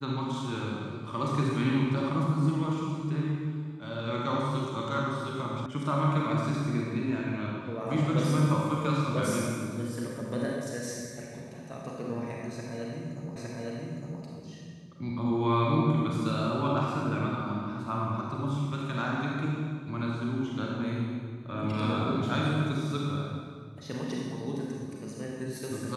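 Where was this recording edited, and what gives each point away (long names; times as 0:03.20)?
0:05.66: cut off before it has died away
0:13.36: the same again, the last 0.86 s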